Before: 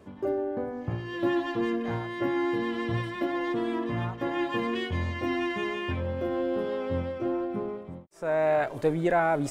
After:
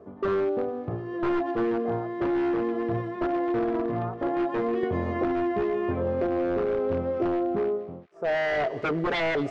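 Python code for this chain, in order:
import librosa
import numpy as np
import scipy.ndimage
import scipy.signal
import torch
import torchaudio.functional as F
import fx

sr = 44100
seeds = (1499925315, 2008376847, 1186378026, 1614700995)

y = fx.highpass(x, sr, hz=88.0, slope=6)
y = fx.peak_eq(y, sr, hz=3100.0, db=-13.0, octaves=1.5)
y = fx.small_body(y, sr, hz=(430.0, 670.0, 1200.0), ring_ms=30, db=11)
y = 10.0 ** (-20.0 / 20.0) * (np.abs((y / 10.0 ** (-20.0 / 20.0) + 3.0) % 4.0 - 2.0) - 1.0)
y = fx.air_absorb(y, sr, metres=170.0)
y = fx.echo_wet_highpass(y, sr, ms=226, feedback_pct=59, hz=2400.0, wet_db=-15)
y = fx.band_squash(y, sr, depth_pct=100, at=(4.83, 7.56))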